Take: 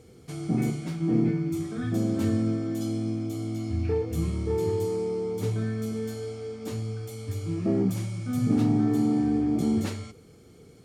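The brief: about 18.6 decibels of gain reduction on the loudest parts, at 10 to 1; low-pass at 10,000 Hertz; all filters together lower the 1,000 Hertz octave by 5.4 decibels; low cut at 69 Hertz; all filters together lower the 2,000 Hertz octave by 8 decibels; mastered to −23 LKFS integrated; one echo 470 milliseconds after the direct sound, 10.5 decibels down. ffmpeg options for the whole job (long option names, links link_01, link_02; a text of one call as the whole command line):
ffmpeg -i in.wav -af "highpass=69,lowpass=10000,equalizer=frequency=1000:width_type=o:gain=-6.5,equalizer=frequency=2000:width_type=o:gain=-8,acompressor=threshold=-39dB:ratio=10,aecho=1:1:470:0.299,volume=19.5dB" out.wav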